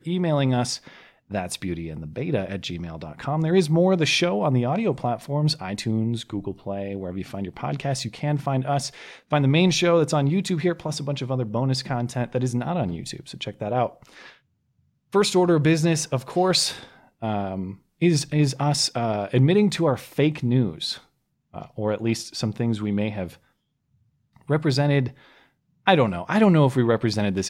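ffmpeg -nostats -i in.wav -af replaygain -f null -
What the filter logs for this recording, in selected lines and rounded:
track_gain = +3.0 dB
track_peak = 0.540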